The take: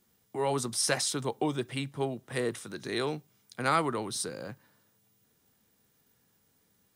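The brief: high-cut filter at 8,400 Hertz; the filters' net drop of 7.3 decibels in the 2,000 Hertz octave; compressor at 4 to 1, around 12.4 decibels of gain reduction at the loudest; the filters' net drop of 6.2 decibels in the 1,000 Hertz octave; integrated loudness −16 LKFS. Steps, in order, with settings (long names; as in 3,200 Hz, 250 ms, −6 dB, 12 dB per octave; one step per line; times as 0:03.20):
low-pass filter 8,400 Hz
parametric band 1,000 Hz −6 dB
parametric band 2,000 Hz −7.5 dB
downward compressor 4 to 1, threshold −42 dBFS
level +28.5 dB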